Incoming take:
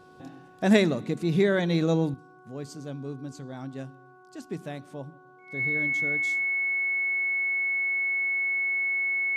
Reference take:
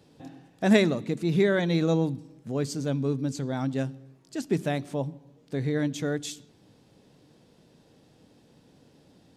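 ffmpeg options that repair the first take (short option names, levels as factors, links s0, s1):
-af "bandreject=f=369.4:t=h:w=4,bandreject=f=738.8:t=h:w=4,bandreject=f=1108.2:t=h:w=4,bandreject=f=1477.6:t=h:w=4,bandreject=f=2200:w=30,asetnsamples=n=441:p=0,asendcmd='2.14 volume volume 9dB',volume=1"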